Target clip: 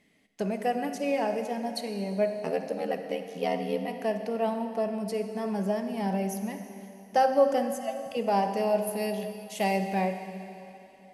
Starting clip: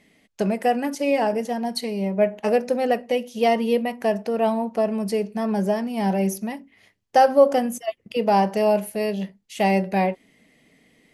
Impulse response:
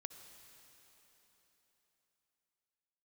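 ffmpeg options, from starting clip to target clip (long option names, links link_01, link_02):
-filter_complex "[0:a]asplit=3[link_01][link_02][link_03];[link_01]afade=type=out:start_time=2.33:duration=0.02[link_04];[link_02]aeval=exprs='val(0)*sin(2*PI*40*n/s)':channel_layout=same,afade=type=in:start_time=2.33:duration=0.02,afade=type=out:start_time=3.87:duration=0.02[link_05];[link_03]afade=type=in:start_time=3.87:duration=0.02[link_06];[link_04][link_05][link_06]amix=inputs=3:normalize=0,asettb=1/sr,asplit=3[link_07][link_08][link_09];[link_07]atrim=end=8.874[link_10];[link_08]atrim=start=8.87:end=9.77,asetpts=PTS-STARTPTS,afade=type=in:duration=0.004:curve=qsin,afade=type=out:start_time=0.896:duration=0.004:curve=qsin,highshelf=frequency=4900:gain=9[link_11];[link_09]atrim=start=9.766[link_12];[link_10][link_11]acrossfade=duration=0.004:curve1=hsin:curve2=qsin[link_13];[link_13][link_12]acrossfade=duration=0.004:curve1=qsin:curve2=hsin[link_14];[1:a]atrim=start_sample=2205,asetrate=57330,aresample=44100[link_15];[link_14][link_15]afir=irnorm=-1:irlink=0"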